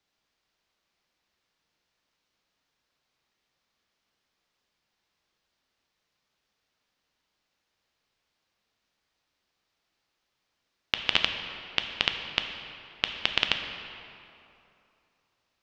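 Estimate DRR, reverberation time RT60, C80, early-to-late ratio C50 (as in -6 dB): 4.5 dB, 2.8 s, 7.0 dB, 6.0 dB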